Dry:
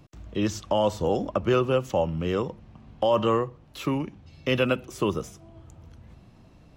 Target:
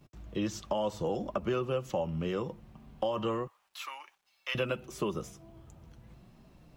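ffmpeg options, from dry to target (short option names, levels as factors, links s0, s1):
-filter_complex "[0:a]asettb=1/sr,asplit=3[s0][s1][s2];[s0]atrim=end=3.474[s3];[s1]atrim=start=3.47:end=4.55,asetpts=PTS-STARTPTS,afade=t=in:d=0.004:c=qsin,afade=t=out:st=1.076:d=0.004:c=qsin,highpass=f=880:w=0.5412,highpass=f=880:w=1.3066[s4];[s2]atrim=start=4.546[s5];[s3][s4]acrossfade=d=0.004:c1=hsin:c2=qsin[s6];[s6][s5]acrossfade=d=0.004:c1=qsin:c2=hsin,agate=range=0.447:threshold=0.00178:ratio=16:detection=peak,acompressor=threshold=0.0562:ratio=3,acrusher=bits=11:mix=0:aa=0.000001,flanger=delay=4.9:depth=1.1:regen=-49:speed=1.4:shape=sinusoidal"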